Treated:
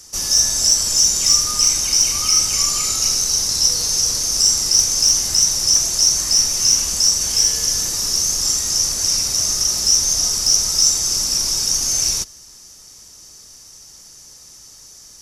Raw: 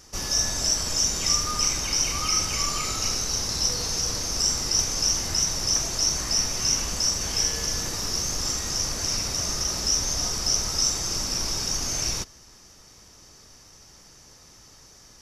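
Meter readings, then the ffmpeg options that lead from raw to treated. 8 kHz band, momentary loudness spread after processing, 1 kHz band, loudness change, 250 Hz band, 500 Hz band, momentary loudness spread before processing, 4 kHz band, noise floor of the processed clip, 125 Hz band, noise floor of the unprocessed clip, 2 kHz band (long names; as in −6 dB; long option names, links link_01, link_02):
+10.0 dB, 4 LU, −0.5 dB, +9.0 dB, −1.0 dB, −1.0 dB, 4 LU, +8.5 dB, −43 dBFS, −1.0 dB, −51 dBFS, +0.5 dB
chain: -filter_complex "[0:a]equalizer=frequency=9500:width_type=o:width=1.5:gain=10.5,acrossover=split=100|3800[link_01][link_02][link_03];[link_03]acontrast=29[link_04];[link_01][link_02][link_04]amix=inputs=3:normalize=0,volume=-1dB"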